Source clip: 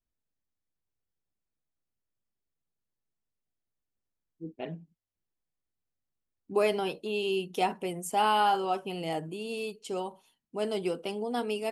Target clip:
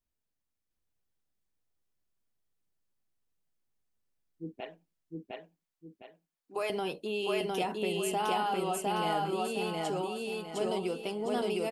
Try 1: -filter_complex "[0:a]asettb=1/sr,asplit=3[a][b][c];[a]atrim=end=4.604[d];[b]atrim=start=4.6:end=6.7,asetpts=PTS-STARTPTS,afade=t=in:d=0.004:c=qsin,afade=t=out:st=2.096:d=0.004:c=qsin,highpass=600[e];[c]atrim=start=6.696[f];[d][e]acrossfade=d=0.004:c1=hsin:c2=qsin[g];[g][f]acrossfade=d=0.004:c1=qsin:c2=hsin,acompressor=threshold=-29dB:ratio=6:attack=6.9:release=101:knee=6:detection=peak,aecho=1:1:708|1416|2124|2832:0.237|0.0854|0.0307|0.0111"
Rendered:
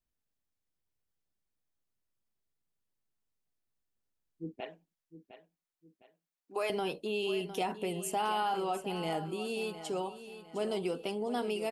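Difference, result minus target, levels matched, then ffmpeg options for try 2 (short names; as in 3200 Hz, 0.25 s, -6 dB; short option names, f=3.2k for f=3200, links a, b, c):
echo-to-direct -11.5 dB
-filter_complex "[0:a]asettb=1/sr,asplit=3[a][b][c];[a]atrim=end=4.604[d];[b]atrim=start=4.6:end=6.7,asetpts=PTS-STARTPTS,afade=t=in:d=0.004:c=qsin,afade=t=out:st=2.096:d=0.004:c=qsin,highpass=600[e];[c]atrim=start=6.696[f];[d][e]acrossfade=d=0.004:c1=hsin:c2=qsin[g];[g][f]acrossfade=d=0.004:c1=qsin:c2=hsin,acompressor=threshold=-29dB:ratio=6:attack=6.9:release=101:knee=6:detection=peak,aecho=1:1:708|1416|2124|2832|3540:0.891|0.321|0.116|0.0416|0.015"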